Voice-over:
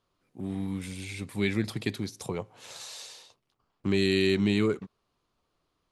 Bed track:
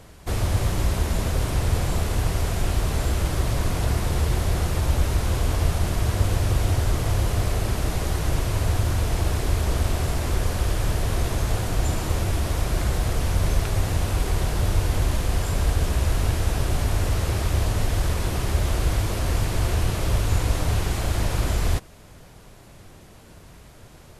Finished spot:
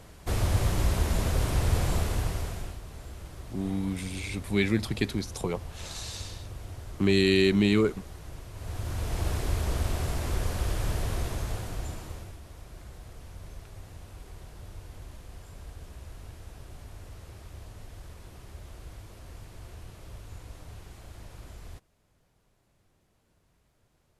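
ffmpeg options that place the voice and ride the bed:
ffmpeg -i stem1.wav -i stem2.wav -filter_complex "[0:a]adelay=3150,volume=2.5dB[link_01];[1:a]volume=10.5dB,afade=type=out:start_time=1.93:duration=0.86:silence=0.149624,afade=type=in:start_time=8.54:duration=0.74:silence=0.211349,afade=type=out:start_time=10.99:duration=1.39:silence=0.149624[link_02];[link_01][link_02]amix=inputs=2:normalize=0" out.wav

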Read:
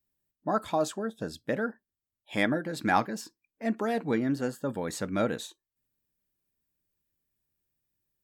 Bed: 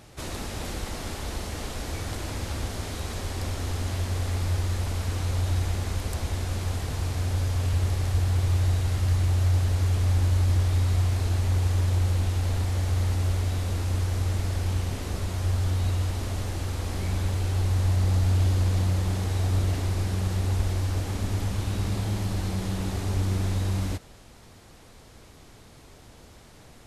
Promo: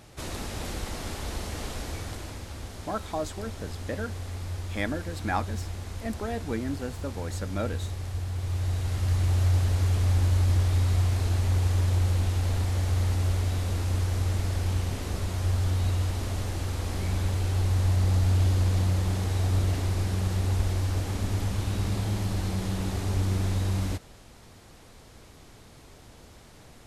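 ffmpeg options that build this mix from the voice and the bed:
ffmpeg -i stem1.wav -i stem2.wav -filter_complex "[0:a]adelay=2400,volume=-4dB[link_01];[1:a]volume=6.5dB,afade=type=out:start_time=1.72:duration=0.73:silence=0.446684,afade=type=in:start_time=8.35:duration=1.01:silence=0.421697[link_02];[link_01][link_02]amix=inputs=2:normalize=0" out.wav

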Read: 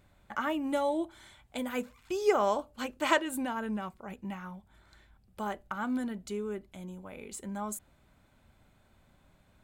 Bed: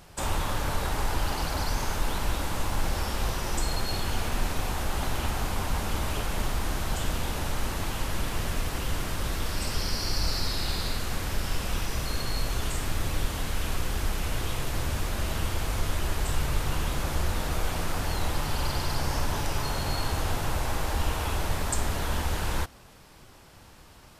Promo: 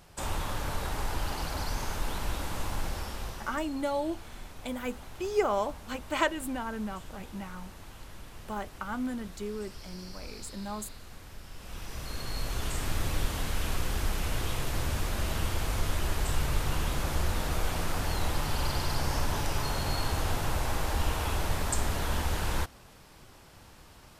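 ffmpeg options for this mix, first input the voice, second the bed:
ffmpeg -i stem1.wav -i stem2.wav -filter_complex "[0:a]adelay=3100,volume=-1dB[link_01];[1:a]volume=11dB,afade=type=out:start_time=2.7:duration=1:silence=0.237137,afade=type=in:start_time=11.54:duration=1.4:silence=0.16788[link_02];[link_01][link_02]amix=inputs=2:normalize=0" out.wav

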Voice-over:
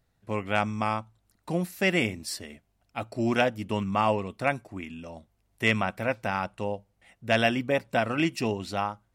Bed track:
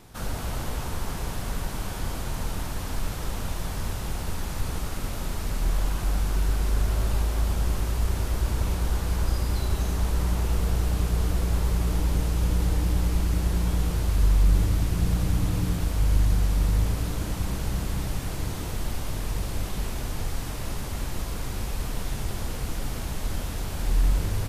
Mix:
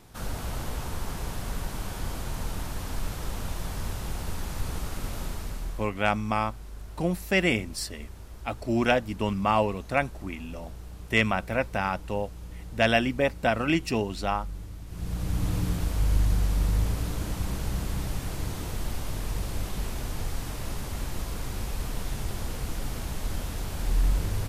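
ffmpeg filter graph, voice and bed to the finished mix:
ffmpeg -i stem1.wav -i stem2.wav -filter_complex "[0:a]adelay=5500,volume=1dB[link_01];[1:a]volume=13dB,afade=type=out:start_time=5.21:duration=0.69:silence=0.177828,afade=type=in:start_time=14.86:duration=0.65:silence=0.16788[link_02];[link_01][link_02]amix=inputs=2:normalize=0" out.wav

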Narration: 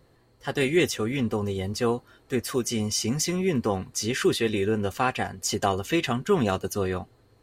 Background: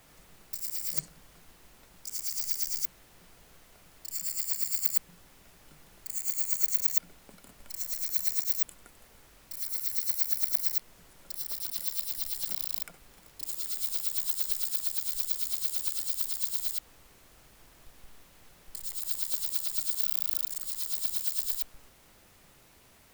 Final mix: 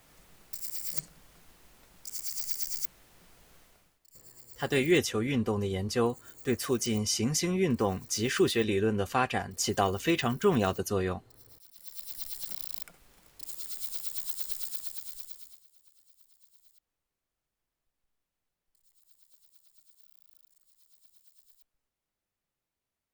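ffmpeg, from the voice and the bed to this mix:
ffmpeg -i stem1.wav -i stem2.wav -filter_complex "[0:a]adelay=4150,volume=-2.5dB[link_01];[1:a]volume=14dB,afade=type=out:start_time=3.61:duration=0.38:silence=0.11885,afade=type=in:start_time=11.75:duration=0.47:silence=0.158489,afade=type=out:start_time=14.64:duration=1:silence=0.0501187[link_02];[link_01][link_02]amix=inputs=2:normalize=0" out.wav

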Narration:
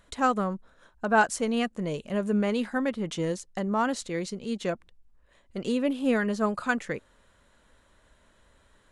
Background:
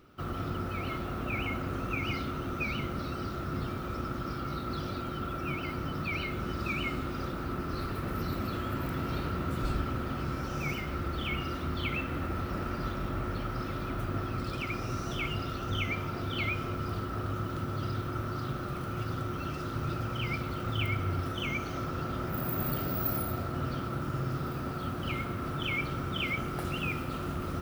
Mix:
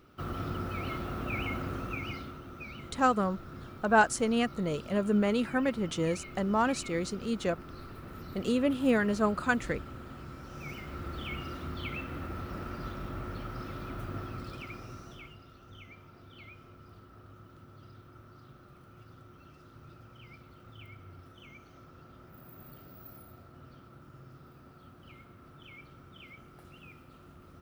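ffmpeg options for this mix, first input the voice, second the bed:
ffmpeg -i stem1.wav -i stem2.wav -filter_complex "[0:a]adelay=2800,volume=-1dB[link_01];[1:a]volume=5dB,afade=type=out:start_time=1.62:duration=0.8:silence=0.316228,afade=type=in:start_time=10.44:duration=0.68:silence=0.501187,afade=type=out:start_time=14.18:duration=1.2:silence=0.199526[link_02];[link_01][link_02]amix=inputs=2:normalize=0" out.wav

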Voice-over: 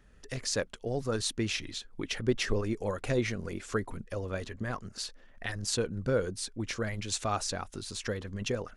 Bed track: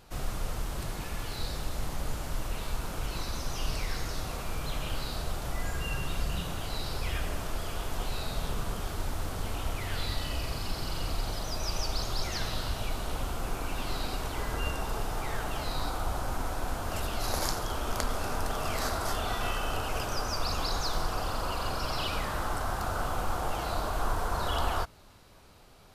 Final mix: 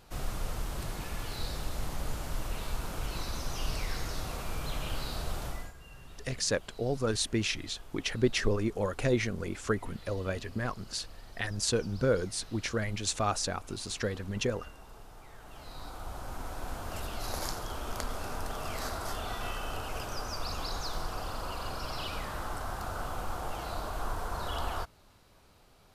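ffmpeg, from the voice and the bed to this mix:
ffmpeg -i stem1.wav -i stem2.wav -filter_complex "[0:a]adelay=5950,volume=1.5dB[link_01];[1:a]volume=11.5dB,afade=type=out:start_time=5.43:duration=0.3:silence=0.149624,afade=type=in:start_time=15.38:duration=1.37:silence=0.223872[link_02];[link_01][link_02]amix=inputs=2:normalize=0" out.wav

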